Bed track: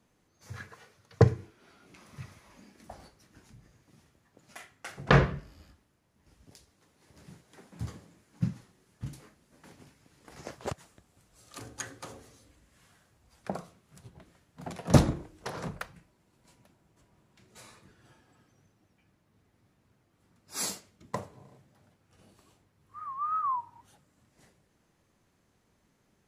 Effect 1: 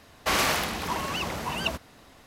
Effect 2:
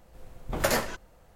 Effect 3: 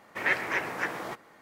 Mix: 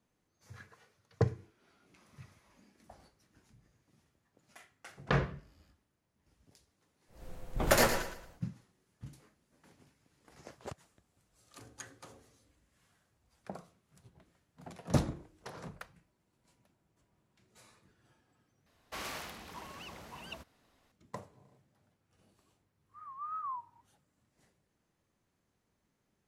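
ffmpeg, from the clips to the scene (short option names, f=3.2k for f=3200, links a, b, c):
-filter_complex "[0:a]volume=-9dB[a];[2:a]aecho=1:1:113|226|339|452:0.355|0.114|0.0363|0.0116[b];[a]asplit=2[c][d];[c]atrim=end=18.664[e];[1:a]atrim=end=2.26,asetpts=PTS-STARTPTS,volume=-17.5dB[f];[d]atrim=start=20.916[g];[b]atrim=end=1.35,asetpts=PTS-STARTPTS,volume=-0.5dB,afade=t=in:d=0.1,afade=t=out:st=1.25:d=0.1,adelay=7070[h];[e][f]acrossfade=d=0.004:c1=hsin:c2=hsin[i];[i][g]acrossfade=d=0.004:c1=hsin:c2=hsin[j];[j][h]amix=inputs=2:normalize=0"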